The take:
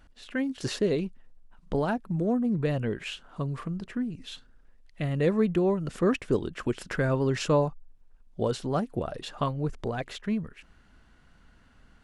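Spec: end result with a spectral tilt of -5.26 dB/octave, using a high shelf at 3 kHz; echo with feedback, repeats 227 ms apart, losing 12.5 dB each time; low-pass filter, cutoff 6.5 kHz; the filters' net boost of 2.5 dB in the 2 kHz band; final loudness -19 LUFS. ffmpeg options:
-af "lowpass=6500,equalizer=f=2000:t=o:g=5.5,highshelf=f=3000:g=-6,aecho=1:1:227|454|681:0.237|0.0569|0.0137,volume=3.16"

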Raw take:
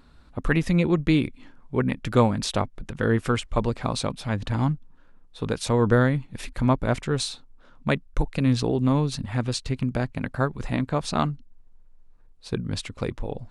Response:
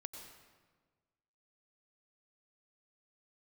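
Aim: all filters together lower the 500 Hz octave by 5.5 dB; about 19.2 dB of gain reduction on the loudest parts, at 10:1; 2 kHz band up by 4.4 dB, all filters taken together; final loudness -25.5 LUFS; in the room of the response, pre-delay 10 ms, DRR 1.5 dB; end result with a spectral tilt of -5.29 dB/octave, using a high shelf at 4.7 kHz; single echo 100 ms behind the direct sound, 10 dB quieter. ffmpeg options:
-filter_complex "[0:a]equalizer=f=500:t=o:g=-7,equalizer=f=2000:t=o:g=7,highshelf=f=4700:g=-5,acompressor=threshold=0.0178:ratio=10,aecho=1:1:100:0.316,asplit=2[s0][s1];[1:a]atrim=start_sample=2205,adelay=10[s2];[s1][s2]afir=irnorm=-1:irlink=0,volume=1.26[s3];[s0][s3]amix=inputs=2:normalize=0,volume=4.47"

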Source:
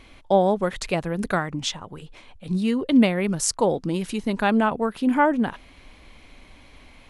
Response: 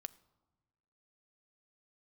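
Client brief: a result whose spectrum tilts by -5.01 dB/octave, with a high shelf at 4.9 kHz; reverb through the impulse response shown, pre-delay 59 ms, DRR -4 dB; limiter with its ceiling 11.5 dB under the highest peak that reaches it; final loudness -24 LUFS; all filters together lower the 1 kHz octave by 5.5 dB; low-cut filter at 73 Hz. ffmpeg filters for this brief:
-filter_complex "[0:a]highpass=73,equalizer=f=1000:t=o:g=-7.5,highshelf=f=4900:g=3.5,alimiter=limit=0.158:level=0:latency=1,asplit=2[s0][s1];[1:a]atrim=start_sample=2205,adelay=59[s2];[s1][s2]afir=irnorm=-1:irlink=0,volume=2.51[s3];[s0][s3]amix=inputs=2:normalize=0,volume=0.668"

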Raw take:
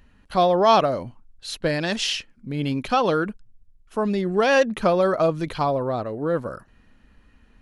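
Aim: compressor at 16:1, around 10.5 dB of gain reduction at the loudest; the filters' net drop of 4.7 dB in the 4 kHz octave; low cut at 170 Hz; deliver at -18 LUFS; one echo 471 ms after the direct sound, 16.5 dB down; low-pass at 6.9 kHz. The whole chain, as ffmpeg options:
-af "highpass=170,lowpass=6900,equalizer=f=4000:t=o:g=-6,acompressor=threshold=0.0708:ratio=16,aecho=1:1:471:0.15,volume=3.76"

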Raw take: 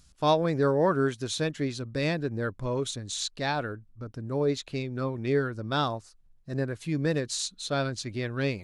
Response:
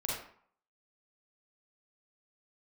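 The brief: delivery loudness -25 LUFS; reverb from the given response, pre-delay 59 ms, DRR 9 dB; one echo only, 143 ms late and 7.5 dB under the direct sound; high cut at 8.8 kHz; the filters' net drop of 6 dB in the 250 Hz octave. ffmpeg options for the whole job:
-filter_complex "[0:a]lowpass=8800,equalizer=f=250:t=o:g=-8.5,aecho=1:1:143:0.422,asplit=2[s0][s1];[1:a]atrim=start_sample=2205,adelay=59[s2];[s1][s2]afir=irnorm=-1:irlink=0,volume=0.224[s3];[s0][s3]amix=inputs=2:normalize=0,volume=1.78"

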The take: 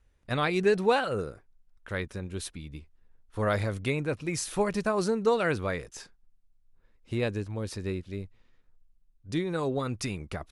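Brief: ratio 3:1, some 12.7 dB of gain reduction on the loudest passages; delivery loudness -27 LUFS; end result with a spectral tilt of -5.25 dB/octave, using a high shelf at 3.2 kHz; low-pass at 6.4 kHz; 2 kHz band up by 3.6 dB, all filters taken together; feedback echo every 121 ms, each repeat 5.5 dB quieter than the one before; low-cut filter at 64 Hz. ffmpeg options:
-af "highpass=64,lowpass=6400,equalizer=f=2000:t=o:g=7,highshelf=f=3200:g=-7,acompressor=threshold=0.0158:ratio=3,aecho=1:1:121|242|363|484|605|726|847:0.531|0.281|0.149|0.079|0.0419|0.0222|0.0118,volume=3.35"

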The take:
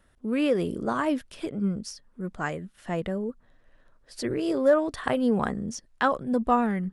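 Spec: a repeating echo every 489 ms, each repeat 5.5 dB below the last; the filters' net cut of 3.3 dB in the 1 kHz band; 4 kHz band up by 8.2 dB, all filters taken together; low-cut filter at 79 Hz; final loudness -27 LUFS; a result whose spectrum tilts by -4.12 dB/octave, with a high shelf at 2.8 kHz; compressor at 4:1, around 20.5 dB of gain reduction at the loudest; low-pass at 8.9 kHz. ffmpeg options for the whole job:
-af "highpass=79,lowpass=8900,equalizer=f=1000:t=o:g=-6,highshelf=f=2800:g=8.5,equalizer=f=4000:t=o:g=4.5,acompressor=threshold=0.00794:ratio=4,aecho=1:1:489|978|1467|1956|2445|2934|3423:0.531|0.281|0.149|0.079|0.0419|0.0222|0.0118,volume=5.62"

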